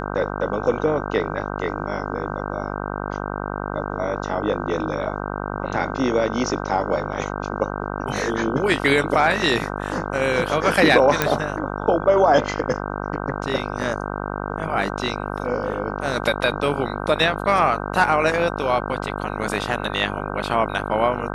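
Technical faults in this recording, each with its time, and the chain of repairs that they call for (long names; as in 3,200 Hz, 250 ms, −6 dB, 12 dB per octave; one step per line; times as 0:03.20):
mains buzz 50 Hz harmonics 31 −28 dBFS
0:11.22: click −2 dBFS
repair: click removal
hum removal 50 Hz, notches 31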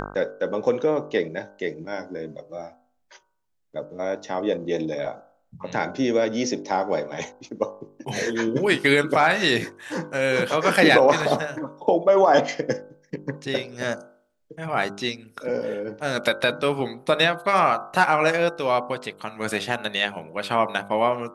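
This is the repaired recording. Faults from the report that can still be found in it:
none of them is left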